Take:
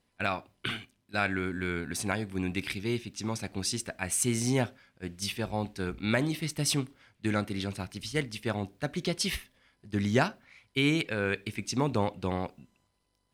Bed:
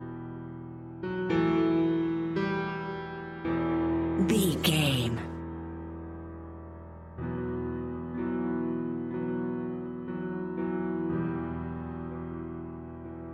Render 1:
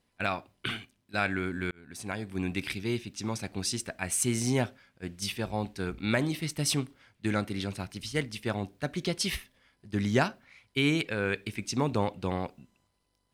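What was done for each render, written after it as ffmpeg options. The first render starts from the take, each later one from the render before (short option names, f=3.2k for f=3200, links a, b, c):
-filter_complex "[0:a]asplit=2[a][b];[a]atrim=end=1.71,asetpts=PTS-STARTPTS,afade=t=out:st=1.706:d=0.004:c=hsin[c];[b]atrim=start=1.71,asetpts=PTS-STARTPTS,afade=t=in:d=0.7[d];[c][d]concat=n=2:v=0:a=1"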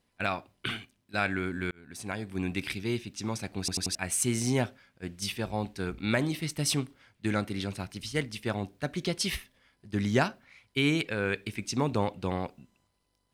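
-filter_complex "[0:a]asplit=5[a][b][c][d][e];[a]atrim=end=3.682[f];[b]atrim=start=3.588:end=3.682[g];[c]atrim=start=3.588:end=3.682[h];[d]atrim=start=3.588:end=3.682[i];[e]atrim=start=3.948[j];[f][g]acrossfade=d=0.004:c1=hsin:c2=hsin[k];[k][h]acrossfade=d=0.004:c1=hsin:c2=hsin[l];[l][i]acrossfade=d=0.004:c1=hsin:c2=hsin[m];[m][j]acrossfade=d=0.004:c1=hsin:c2=hsin"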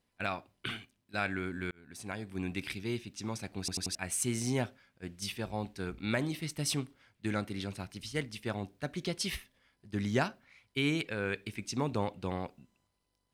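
-af "volume=-4.5dB"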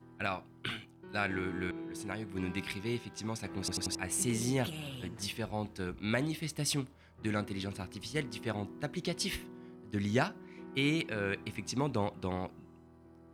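-filter_complex "[1:a]volume=-16.5dB[a];[0:a][a]amix=inputs=2:normalize=0"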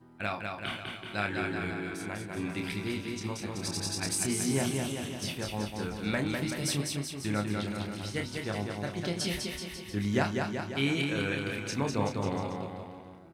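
-filter_complex "[0:a]asplit=2[a][b];[b]adelay=29,volume=-5.5dB[c];[a][c]amix=inputs=2:normalize=0,aecho=1:1:200|380|542|687.8|819:0.631|0.398|0.251|0.158|0.1"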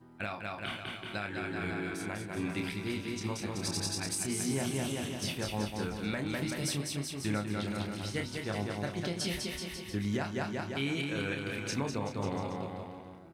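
-af "alimiter=limit=-22.5dB:level=0:latency=1:release=376"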